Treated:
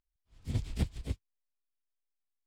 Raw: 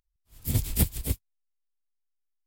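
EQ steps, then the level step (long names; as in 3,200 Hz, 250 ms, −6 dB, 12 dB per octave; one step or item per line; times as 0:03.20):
high-frequency loss of the air 120 metres
−6.5 dB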